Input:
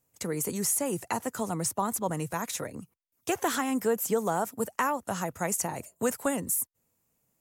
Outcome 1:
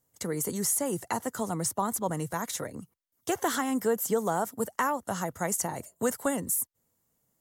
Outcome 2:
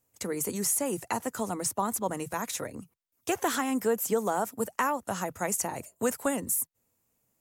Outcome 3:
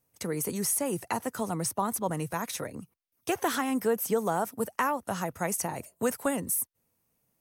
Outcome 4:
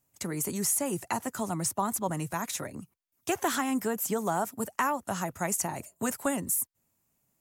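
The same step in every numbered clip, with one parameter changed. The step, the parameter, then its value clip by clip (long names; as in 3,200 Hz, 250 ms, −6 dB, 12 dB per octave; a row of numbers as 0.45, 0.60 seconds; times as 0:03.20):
notch filter, centre frequency: 2,500, 160, 7,200, 480 Hertz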